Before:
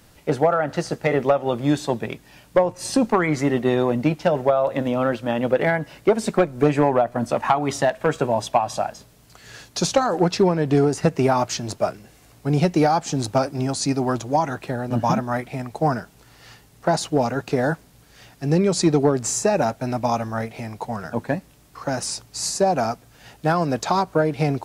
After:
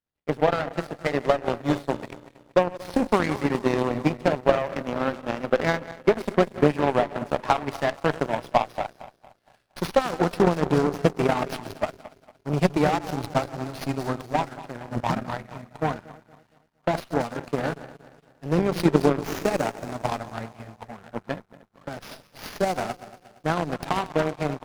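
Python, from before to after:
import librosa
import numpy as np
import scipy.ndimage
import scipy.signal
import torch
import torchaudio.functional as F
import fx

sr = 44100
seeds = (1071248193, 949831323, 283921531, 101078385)

y = fx.reverse_delay_fb(x, sr, ms=116, feedback_pct=78, wet_db=-9.5)
y = fx.power_curve(y, sr, exponent=2.0)
y = fx.running_max(y, sr, window=5)
y = y * librosa.db_to_amplitude(3.5)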